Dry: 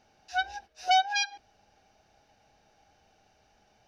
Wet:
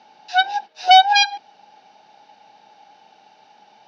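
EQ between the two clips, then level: HPF 170 Hz 24 dB/oct; synth low-pass 4000 Hz, resonance Q 2; bell 870 Hz +14.5 dB 0.22 oct; +9.0 dB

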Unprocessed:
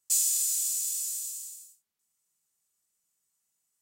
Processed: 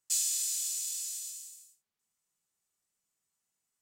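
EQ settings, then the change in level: dynamic EQ 3900 Hz, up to +4 dB, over -43 dBFS, Q 0.86; high shelf 6200 Hz -9.5 dB; 0.0 dB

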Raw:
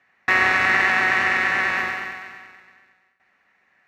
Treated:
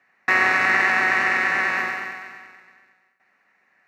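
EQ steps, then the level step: HPF 140 Hz 12 dB/oct; bell 3300 Hz -8 dB 0.33 oct; 0.0 dB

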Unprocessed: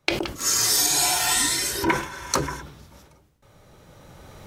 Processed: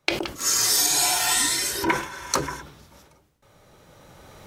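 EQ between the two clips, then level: low shelf 220 Hz -5.5 dB; 0.0 dB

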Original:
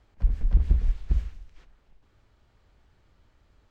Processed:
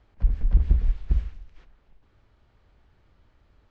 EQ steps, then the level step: air absorption 99 m; +1.5 dB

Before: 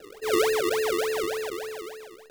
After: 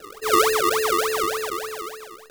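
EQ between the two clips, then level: low shelf 240 Hz +5 dB; bell 1200 Hz +13.5 dB 0.42 oct; high shelf 2900 Hz +9 dB; 0.0 dB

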